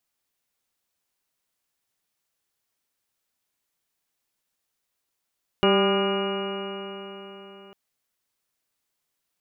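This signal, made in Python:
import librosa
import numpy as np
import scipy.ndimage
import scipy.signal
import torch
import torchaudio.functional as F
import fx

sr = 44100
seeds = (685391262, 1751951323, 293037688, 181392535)

y = fx.additive_stiff(sr, length_s=2.1, hz=195.0, level_db=-22.5, upper_db=(4, -2.0, -5.0, -8.0, -4.5, -8, -17.0, -19.5, -18.5, -11, -20.0, -2.0), decay_s=4.16, stiffness=0.0017)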